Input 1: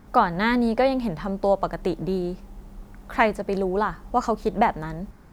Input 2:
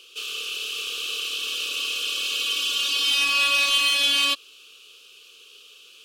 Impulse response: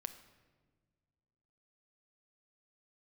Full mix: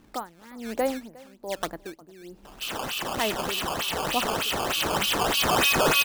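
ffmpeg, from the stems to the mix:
-filter_complex "[0:a]equalizer=f=320:t=o:w=0.62:g=7.5,aeval=exprs='val(0)*pow(10,-22*(0.5-0.5*cos(2*PI*1.2*n/s))/20)':c=same,volume=-6dB,asplit=2[a][b];[b]volume=-22.5dB[c];[1:a]highpass=890,adelay=2450,volume=0.5dB[d];[c]aecho=0:1:358:1[e];[a][d][e]amix=inputs=3:normalize=0,acrusher=samples=13:mix=1:aa=0.000001:lfo=1:lforange=20.8:lforate=3.3,lowshelf=f=160:g=-5.5"

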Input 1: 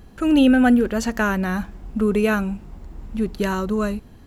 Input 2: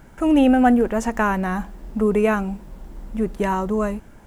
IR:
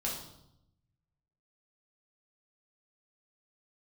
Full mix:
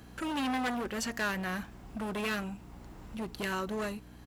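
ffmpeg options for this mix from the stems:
-filter_complex "[0:a]volume=20dB,asoftclip=hard,volume=-20dB,alimiter=level_in=1dB:limit=-24dB:level=0:latency=1:release=357,volume=-1dB,aeval=exprs='val(0)+0.01*(sin(2*PI*60*n/s)+sin(2*PI*2*60*n/s)/2+sin(2*PI*3*60*n/s)/3+sin(2*PI*4*60*n/s)/4+sin(2*PI*5*60*n/s)/5)':c=same,volume=0dB[a];[1:a]highpass=f=1.1k:p=1,asplit=2[b][c];[c]adelay=4.7,afreqshift=1.5[d];[b][d]amix=inputs=2:normalize=1,volume=-8dB[e];[a][e]amix=inputs=2:normalize=0,highpass=f=71:p=1,lowshelf=f=420:g=-9.5"

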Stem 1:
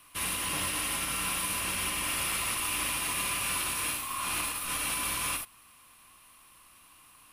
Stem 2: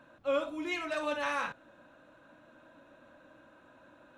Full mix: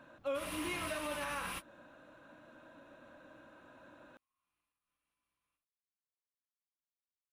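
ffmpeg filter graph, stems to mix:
-filter_complex "[0:a]highshelf=f=3.7k:g=-9.5,adelay=200,volume=-2dB[a];[1:a]volume=0.5dB,asplit=2[b][c];[c]apad=whole_len=331879[d];[a][d]sidechaingate=range=-52dB:threshold=-46dB:ratio=16:detection=peak[e];[e][b]amix=inputs=2:normalize=0,alimiter=level_in=5dB:limit=-24dB:level=0:latency=1:release=329,volume=-5dB"

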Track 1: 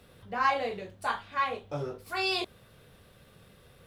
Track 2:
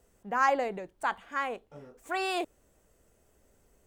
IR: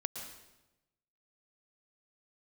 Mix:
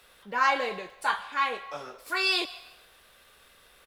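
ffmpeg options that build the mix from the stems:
-filter_complex "[0:a]highpass=910,volume=2dB,asplit=2[a][b];[b]volume=-7.5dB[c];[1:a]adelay=7.7,volume=-2.5dB[d];[2:a]atrim=start_sample=2205[e];[c][e]afir=irnorm=-1:irlink=0[f];[a][d][f]amix=inputs=3:normalize=0"

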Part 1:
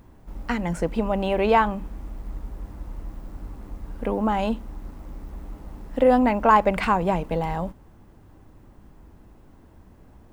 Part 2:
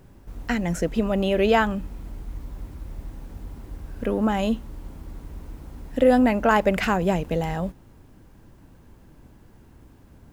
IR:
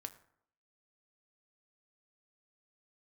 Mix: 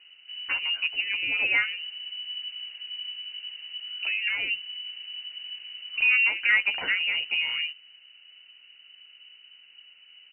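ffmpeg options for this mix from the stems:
-filter_complex "[0:a]volume=-5.5dB,asplit=2[a][b];[1:a]adelay=12,volume=-6.5dB[c];[b]apad=whole_len=455910[d];[c][d]sidechaincompress=threshold=-28dB:ratio=8:attack=16:release=281[e];[a][e]amix=inputs=2:normalize=0,equalizer=f=1.9k:w=4.7:g=-8,lowpass=f=2.6k:t=q:w=0.5098,lowpass=f=2.6k:t=q:w=0.6013,lowpass=f=2.6k:t=q:w=0.9,lowpass=f=2.6k:t=q:w=2.563,afreqshift=-3000"

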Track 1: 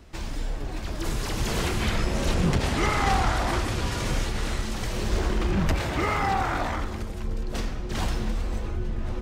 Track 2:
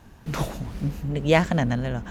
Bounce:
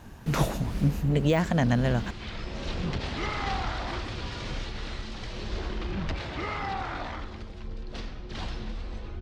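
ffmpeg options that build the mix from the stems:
-filter_complex "[0:a]lowpass=f=4.2k:t=q:w=1.6,adelay=400,volume=-8dB[a];[1:a]deesser=0.65,alimiter=limit=-15dB:level=0:latency=1:release=277,volume=3dB,asplit=2[b][c];[c]apad=whole_len=424039[d];[a][d]sidechaincompress=threshold=-28dB:ratio=8:attack=36:release=1170[e];[e][b]amix=inputs=2:normalize=0"

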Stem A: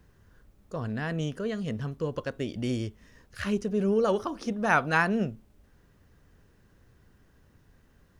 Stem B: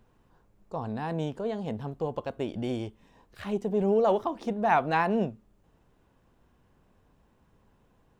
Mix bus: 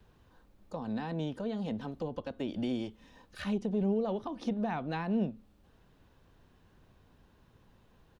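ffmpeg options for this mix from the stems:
-filter_complex "[0:a]bandreject=f=2k:w=12,volume=-6dB[a];[1:a]lowpass=f=4.1k:t=q:w=2.3,adelay=4,volume=-1dB,asplit=2[b][c];[c]apad=whole_len=361257[d];[a][d]sidechaincompress=threshold=-33dB:ratio=8:attack=16:release=142[e];[e][b]amix=inputs=2:normalize=0,acrossover=split=310[f][g];[g]acompressor=threshold=-40dB:ratio=3[h];[f][h]amix=inputs=2:normalize=0"

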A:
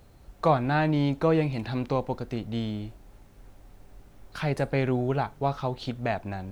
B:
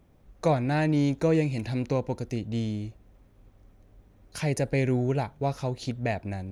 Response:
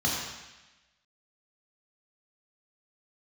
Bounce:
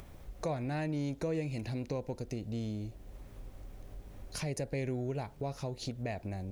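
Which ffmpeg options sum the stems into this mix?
-filter_complex "[0:a]lowshelf=f=770:t=q:w=1.5:g=8.5,acompressor=threshold=-28dB:ratio=3,volume=-13dB,asplit=2[a][b];[1:a]equalizer=f=240:t=o:w=2.4:g=-9.5,acompressor=mode=upward:threshold=-38dB:ratio=2.5,acrusher=bits=10:mix=0:aa=0.000001,volume=-1.5dB[c];[b]apad=whole_len=287113[d];[c][d]sidechaincompress=threshold=-44dB:ratio=8:attack=22:release=242[e];[a][e]amix=inputs=2:normalize=0"

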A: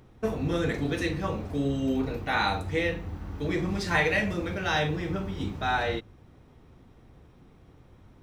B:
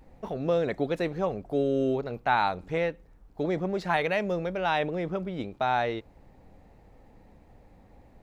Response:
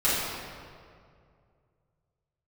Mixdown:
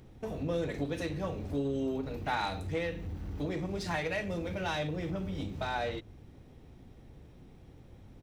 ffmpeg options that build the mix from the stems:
-filter_complex "[0:a]equalizer=f=1.1k:w=1:g=-8.5,acompressor=threshold=-33dB:ratio=6,asoftclip=type=tanh:threshold=-32dB,volume=1dB[a];[1:a]adelay=1.3,volume=-9.5dB[b];[a][b]amix=inputs=2:normalize=0"

